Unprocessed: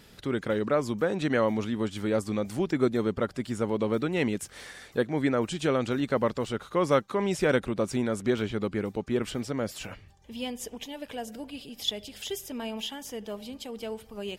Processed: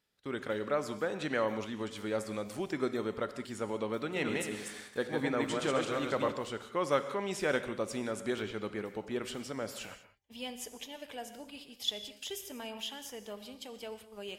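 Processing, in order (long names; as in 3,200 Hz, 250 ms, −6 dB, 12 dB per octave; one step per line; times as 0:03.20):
0:04.03–0:06.32: feedback delay that plays each chunk backwards 131 ms, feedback 41%, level −2 dB
noise gate −43 dBFS, range −21 dB
low-shelf EQ 340 Hz −9.5 dB
reverb whose tail is shaped and stops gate 220 ms flat, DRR 10 dB
level −4 dB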